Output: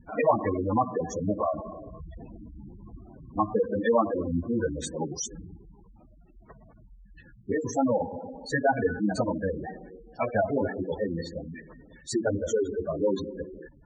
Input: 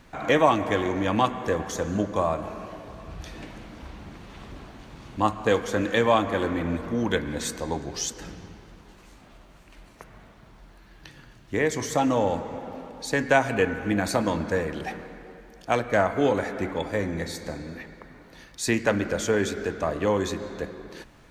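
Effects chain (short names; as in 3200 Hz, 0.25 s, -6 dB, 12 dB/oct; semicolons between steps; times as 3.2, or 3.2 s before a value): plain phase-vocoder stretch 0.65×; spectral gate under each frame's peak -10 dB strong; gain +2.5 dB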